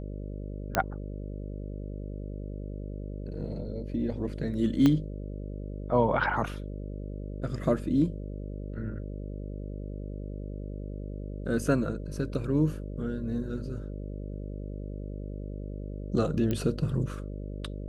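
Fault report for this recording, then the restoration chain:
buzz 50 Hz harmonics 12 -37 dBFS
0.75 s: pop -9 dBFS
4.86 s: pop -12 dBFS
16.51 s: pop -17 dBFS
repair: de-click; de-hum 50 Hz, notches 12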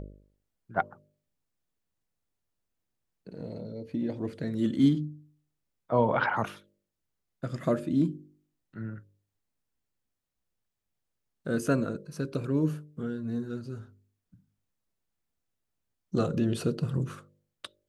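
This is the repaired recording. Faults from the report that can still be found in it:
4.86 s: pop

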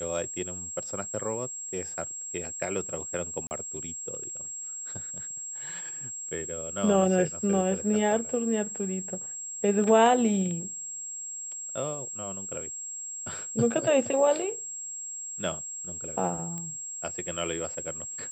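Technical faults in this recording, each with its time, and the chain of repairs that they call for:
whine 7.6 kHz -35 dBFS
3.47–3.51 s: dropout 39 ms
16.58 s: pop -23 dBFS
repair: de-click; band-stop 7.6 kHz, Q 30; interpolate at 3.47 s, 39 ms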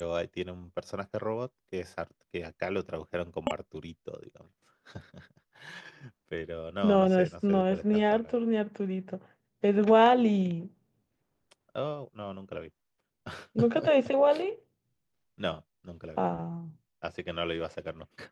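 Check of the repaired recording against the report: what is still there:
whine 7.6 kHz

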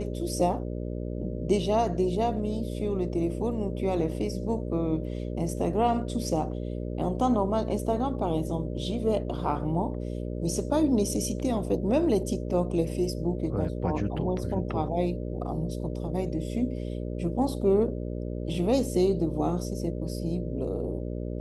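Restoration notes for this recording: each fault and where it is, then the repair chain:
buzz 60 Hz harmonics 10 -33 dBFS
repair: de-hum 60 Hz, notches 10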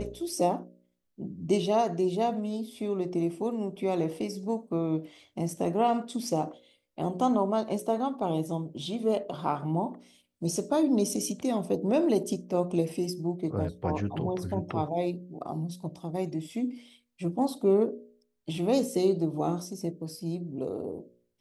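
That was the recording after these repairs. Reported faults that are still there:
nothing left

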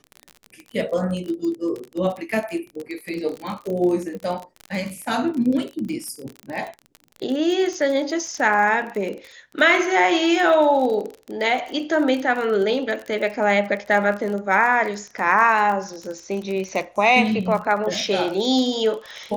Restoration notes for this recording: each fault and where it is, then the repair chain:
crackle 35 per s -27 dBFS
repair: de-click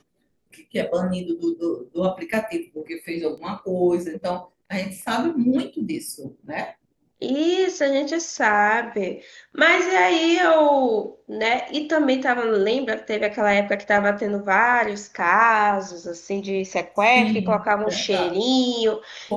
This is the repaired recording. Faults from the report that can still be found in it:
nothing left

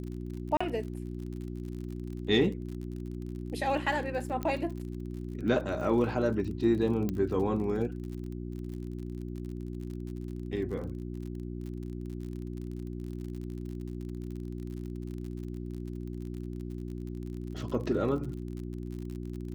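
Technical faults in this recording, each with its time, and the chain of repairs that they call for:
crackle 50 per s -39 dBFS
hum 60 Hz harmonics 6 -38 dBFS
0.57–0.60 s: dropout 35 ms
4.43 s: pop -21 dBFS
7.09 s: pop -19 dBFS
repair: de-click; de-hum 60 Hz, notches 6; interpolate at 0.57 s, 35 ms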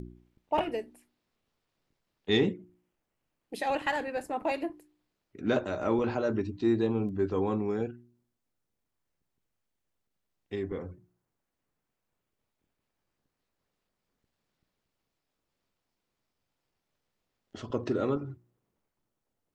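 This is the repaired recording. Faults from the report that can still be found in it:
7.09 s: pop

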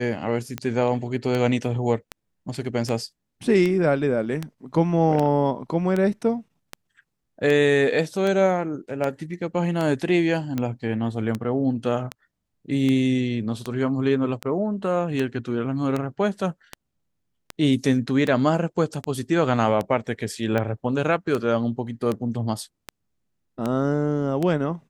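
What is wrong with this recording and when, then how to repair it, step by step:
tick 78 rpm -13 dBFS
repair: de-click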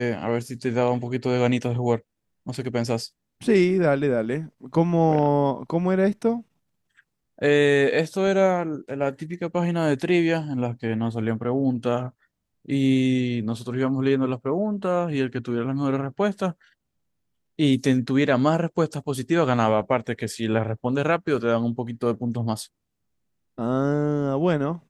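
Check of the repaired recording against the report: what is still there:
nothing left

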